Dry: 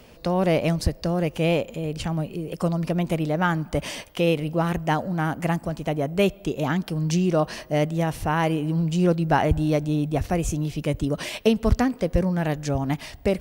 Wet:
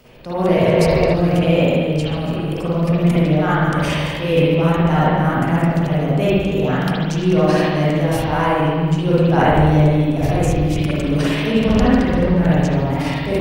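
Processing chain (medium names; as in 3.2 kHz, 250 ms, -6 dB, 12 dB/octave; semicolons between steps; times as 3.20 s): backward echo that repeats 138 ms, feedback 40%, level -13 dB; transient shaper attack -5 dB, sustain +10 dB; spring tank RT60 1.5 s, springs 46/54 ms, chirp 30 ms, DRR -8.5 dB; 0.62–1.11 s: spectral replace 220–2800 Hz before; 11.50–12.62 s: treble shelf 10 kHz -5.5 dB; trim -2.5 dB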